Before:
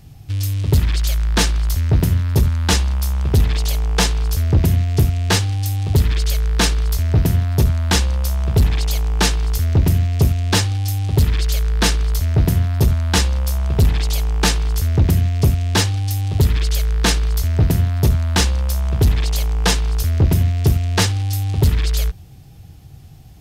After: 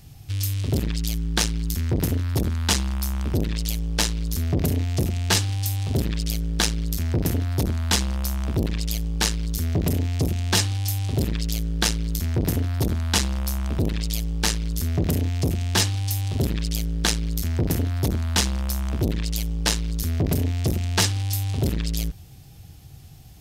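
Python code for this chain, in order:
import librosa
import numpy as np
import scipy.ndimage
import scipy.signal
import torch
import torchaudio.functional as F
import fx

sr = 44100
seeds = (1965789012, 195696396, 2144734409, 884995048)

y = fx.high_shelf(x, sr, hz=2500.0, db=7.0)
y = fx.transformer_sat(y, sr, knee_hz=490.0)
y = y * librosa.db_to_amplitude(-4.0)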